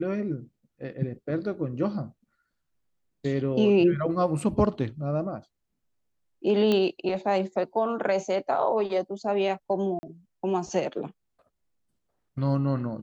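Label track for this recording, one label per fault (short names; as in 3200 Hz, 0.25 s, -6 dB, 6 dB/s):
6.720000	6.720000	pop -13 dBFS
9.990000	10.030000	gap 40 ms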